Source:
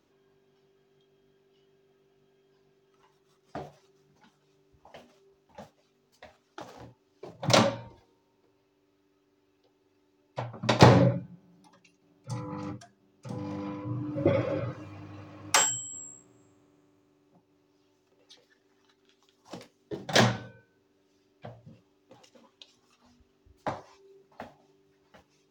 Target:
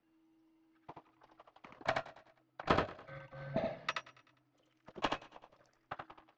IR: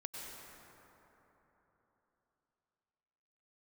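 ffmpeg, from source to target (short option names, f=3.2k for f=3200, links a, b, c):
-filter_complex "[0:a]acrossover=split=200 2200:gain=0.0708 1 0.0794[a][b][c];[a][b][c]amix=inputs=3:normalize=0,asplit=2[d][e];[e]aecho=0:1:406|812|1218|1624:0.126|0.0642|0.0327|0.0167[f];[d][f]amix=inputs=2:normalize=0,atempo=2,highpass=f=290:t=q:w=0.5412,highpass=f=290:t=q:w=1.307,lowpass=f=3.4k:t=q:w=0.5176,lowpass=f=3.4k:t=q:w=0.7071,lowpass=f=3.4k:t=q:w=1.932,afreqshift=-230,asplit=2[g][h];[h]aecho=0:1:155:0.668[i];[g][i]amix=inputs=2:normalize=0,asetrate=88200,aresample=44100,volume=-7dB"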